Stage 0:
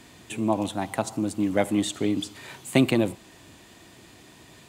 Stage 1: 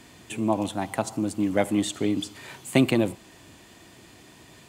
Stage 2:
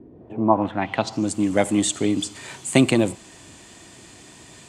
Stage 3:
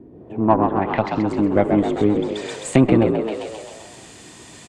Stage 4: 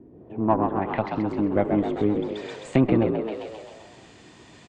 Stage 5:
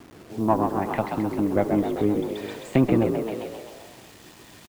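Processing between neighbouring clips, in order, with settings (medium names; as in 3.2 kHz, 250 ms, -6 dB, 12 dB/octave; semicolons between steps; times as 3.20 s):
band-stop 3.8 kHz, Q 25
low-pass sweep 390 Hz -> 8.2 kHz, 0.11–1.33 s; trim +3.5 dB
Chebyshev shaper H 8 -25 dB, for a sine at -1 dBFS; frequency-shifting echo 131 ms, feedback 59%, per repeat +53 Hz, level -6 dB; low-pass that closes with the level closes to 1.5 kHz, closed at -17 dBFS; trim +2 dB
distance through air 120 m; trim -5 dB
bit crusher 8-bit; delay 394 ms -18 dB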